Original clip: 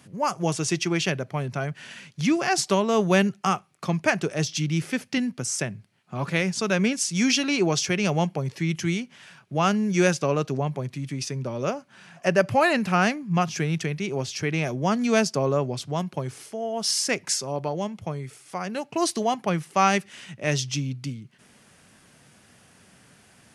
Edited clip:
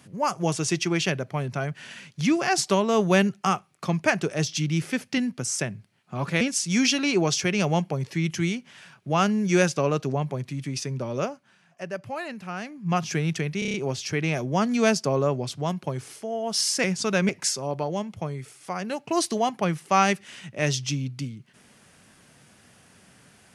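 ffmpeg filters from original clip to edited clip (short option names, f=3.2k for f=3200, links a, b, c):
-filter_complex "[0:a]asplit=11[a][b][c][d][e][f][g][h][i][j][k];[a]atrim=end=6.412[l];[b]atrim=start=6.858:end=12.03,asetpts=PTS-STARTPTS,afade=t=out:st=4.772:d=0.4:silence=0.223872[m];[c]atrim=start=12.03:end=13.08,asetpts=PTS-STARTPTS,volume=-13dB[n];[d]atrim=start=13.08:end=14.072,asetpts=PTS-STARTPTS,afade=t=in:d=0.4:silence=0.223872[o];[e]atrim=start=14.038:end=14.072[p];[f]atrim=start=14.038:end=14.072[q];[g]atrim=start=14.038:end=14.072[r];[h]atrim=start=14.038:end=14.072[s];[i]atrim=start=14.038:end=17.142[t];[j]atrim=start=6.408:end=6.862[u];[k]atrim=start=17.138[v];[m][n][o]concat=n=3:v=0:a=1[w];[l][w]acrossfade=d=0.004:c1=hsin:c2=hsin[x];[x][p]acrossfade=d=0.004:c1=hsin:c2=hsin[y];[y][q]acrossfade=d=0.004:c1=hsin:c2=hsin[z];[z][r]acrossfade=d=0.004:c1=hsin:c2=hsin[aa];[aa][s]acrossfade=d=0.004:c1=hsin:c2=hsin[ab];[ab][t]acrossfade=d=0.004:c1=hsin:c2=hsin[ac];[ac][u]acrossfade=d=0.004:c1=hsin:c2=hsin[ad];[ad][v]acrossfade=d=0.004:c1=hsin:c2=hsin"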